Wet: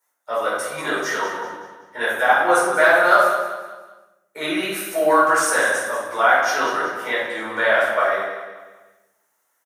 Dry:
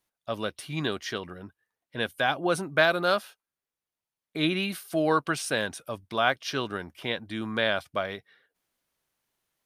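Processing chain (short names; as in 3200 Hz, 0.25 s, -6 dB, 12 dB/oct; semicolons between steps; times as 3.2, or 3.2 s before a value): HPF 700 Hz 12 dB/oct; band shelf 3400 Hz -12.5 dB 1.3 oct; in parallel at 0 dB: limiter -21 dBFS, peak gain reduction 9 dB; 1.21–1.97 on the sum: small resonant body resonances 920/1800/3200 Hz, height 16 dB; on a send: feedback echo 0.19 s, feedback 39%, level -11 dB; on the sum: shoebox room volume 310 m³, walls mixed, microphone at 4.5 m; gain -3 dB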